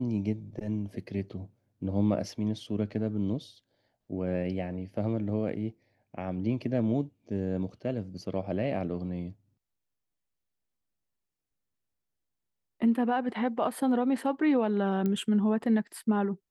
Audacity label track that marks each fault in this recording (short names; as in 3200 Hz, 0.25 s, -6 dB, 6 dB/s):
15.060000	15.060000	pop -19 dBFS